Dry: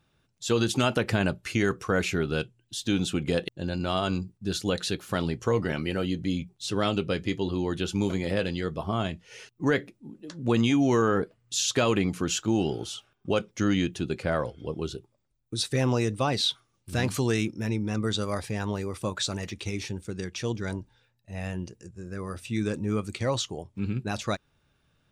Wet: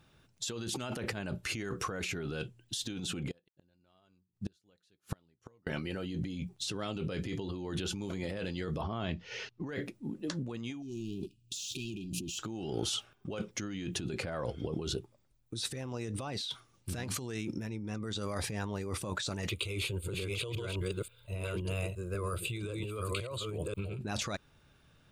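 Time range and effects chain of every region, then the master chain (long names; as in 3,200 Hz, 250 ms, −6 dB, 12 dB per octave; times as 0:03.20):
0:03.31–0:05.67: gate with flip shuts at −26 dBFS, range −35 dB + expander for the loud parts, over −56 dBFS
0:08.81–0:09.69: low-pass filter 5,400 Hz 24 dB per octave + downward compressor 2 to 1, threshold −36 dBFS
0:10.82–0:12.39: leveller curve on the samples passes 2 + linear-phase brick-wall band-stop 400–2,400 Hz
0:19.49–0:23.99: delay that plays each chunk backwards 531 ms, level −2 dB + high-shelf EQ 6,600 Hz +9 dB + phaser with its sweep stopped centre 1,200 Hz, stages 8
whole clip: brickwall limiter −24 dBFS; compressor whose output falls as the input rises −38 dBFS, ratio −1; level +1 dB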